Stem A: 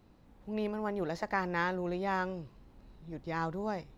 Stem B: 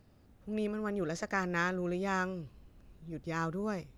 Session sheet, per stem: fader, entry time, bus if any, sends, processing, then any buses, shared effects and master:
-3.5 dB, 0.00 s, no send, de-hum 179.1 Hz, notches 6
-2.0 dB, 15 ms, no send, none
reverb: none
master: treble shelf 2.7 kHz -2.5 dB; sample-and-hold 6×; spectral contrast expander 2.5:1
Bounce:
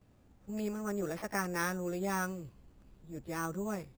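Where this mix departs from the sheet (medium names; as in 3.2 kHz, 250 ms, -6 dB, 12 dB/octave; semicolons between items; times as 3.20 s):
stem A -3.5 dB -> -10.5 dB; master: missing spectral contrast expander 2.5:1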